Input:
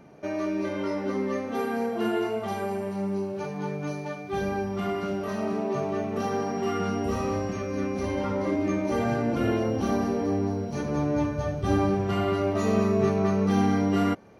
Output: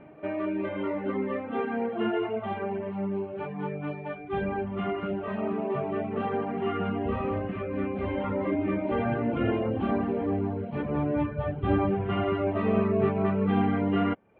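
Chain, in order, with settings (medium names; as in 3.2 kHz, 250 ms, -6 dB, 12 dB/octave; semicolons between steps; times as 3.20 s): steep low-pass 3.2 kHz 48 dB/octave; on a send: reverse echo 227 ms -23 dB; on the sum: reverb removal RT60 0.56 s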